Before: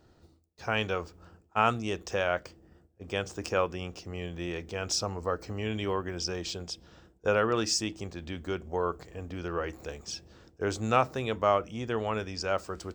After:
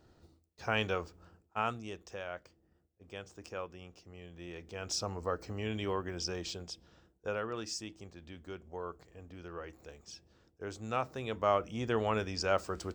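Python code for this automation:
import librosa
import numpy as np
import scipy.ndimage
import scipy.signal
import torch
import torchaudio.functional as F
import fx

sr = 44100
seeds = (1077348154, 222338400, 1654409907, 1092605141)

y = fx.gain(x, sr, db=fx.line((0.93, -2.5), (2.18, -13.5), (4.25, -13.5), (5.11, -4.0), (6.4, -4.0), (7.48, -11.5), (10.78, -11.5), (11.85, -0.5)))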